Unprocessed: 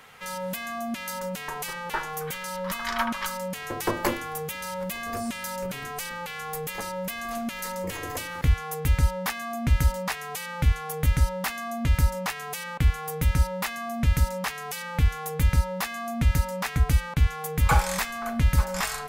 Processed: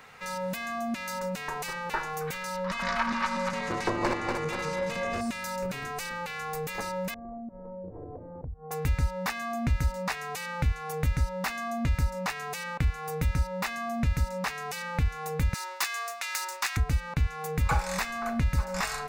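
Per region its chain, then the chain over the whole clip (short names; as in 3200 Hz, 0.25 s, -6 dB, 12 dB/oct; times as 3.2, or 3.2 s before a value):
2.65–5.21 regenerating reverse delay 0.12 s, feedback 67%, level -3.5 dB + LPF 6600 Hz
7.14–8.71 inverse Chebyshev low-pass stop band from 3000 Hz, stop band 70 dB + compressor 5:1, threshold -37 dBFS
15.54–16.77 HPF 810 Hz 24 dB/oct + high shelf 3200 Hz +11 dB + Doppler distortion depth 0.23 ms
whole clip: bell 12000 Hz -10 dB 0.75 oct; notch 3200 Hz, Q 7.7; compressor 2:1, threshold -26 dBFS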